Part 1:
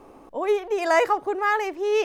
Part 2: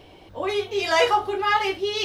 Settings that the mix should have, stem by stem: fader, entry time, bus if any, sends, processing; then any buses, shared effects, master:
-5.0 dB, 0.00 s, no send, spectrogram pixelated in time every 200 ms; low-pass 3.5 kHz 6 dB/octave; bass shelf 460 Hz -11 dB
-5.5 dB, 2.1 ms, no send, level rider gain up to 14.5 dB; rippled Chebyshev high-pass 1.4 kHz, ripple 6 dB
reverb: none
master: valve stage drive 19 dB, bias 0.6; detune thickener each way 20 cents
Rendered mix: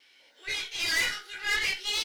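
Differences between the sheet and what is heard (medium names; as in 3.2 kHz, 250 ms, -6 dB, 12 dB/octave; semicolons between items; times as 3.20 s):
stem 1 -5.0 dB -> -16.0 dB; stem 2 -5.5 dB -> +6.0 dB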